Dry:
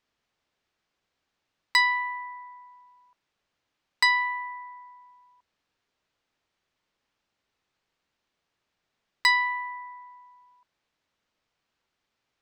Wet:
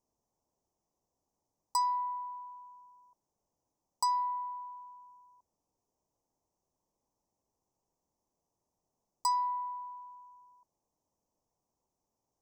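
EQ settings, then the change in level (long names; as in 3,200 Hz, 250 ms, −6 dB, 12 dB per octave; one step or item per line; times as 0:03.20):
elliptic band-stop filter 960–5,900 Hz, stop band 40 dB
0.0 dB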